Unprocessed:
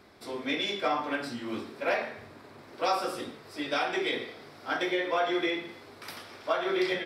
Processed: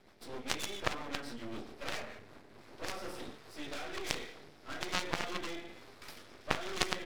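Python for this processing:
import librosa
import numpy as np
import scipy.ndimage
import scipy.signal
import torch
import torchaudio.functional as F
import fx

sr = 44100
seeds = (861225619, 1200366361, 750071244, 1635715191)

y = fx.rotary_switch(x, sr, hz=7.5, then_hz=1.2, switch_at_s=1.83)
y = fx.cheby_harmonics(y, sr, harmonics=(3,), levels_db=(-7,), full_scale_db=-17.5)
y = np.maximum(y, 0.0)
y = y * librosa.db_to_amplitude(9.5)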